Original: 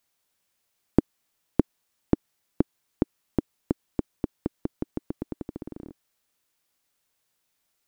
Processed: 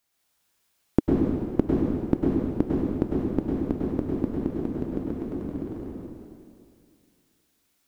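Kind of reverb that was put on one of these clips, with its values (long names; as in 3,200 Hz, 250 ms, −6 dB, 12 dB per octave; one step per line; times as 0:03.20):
dense smooth reverb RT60 2.3 s, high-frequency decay 0.95×, pre-delay 90 ms, DRR −4.5 dB
level −1 dB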